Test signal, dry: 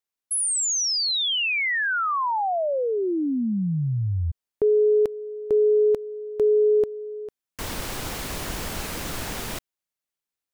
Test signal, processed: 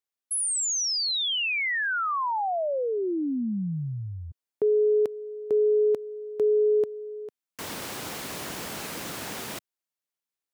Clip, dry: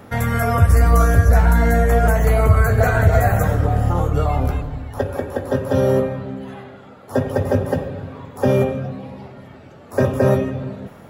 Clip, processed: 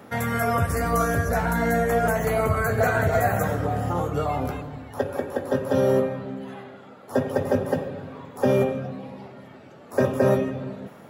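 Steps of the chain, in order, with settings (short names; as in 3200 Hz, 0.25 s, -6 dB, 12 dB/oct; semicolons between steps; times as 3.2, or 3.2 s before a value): HPF 150 Hz 12 dB/oct; gain -3 dB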